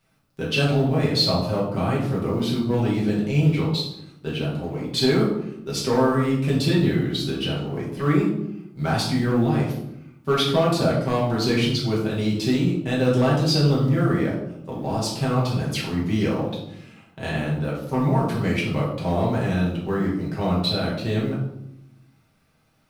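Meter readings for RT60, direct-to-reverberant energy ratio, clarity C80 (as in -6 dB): 0.80 s, -6.0 dB, 7.0 dB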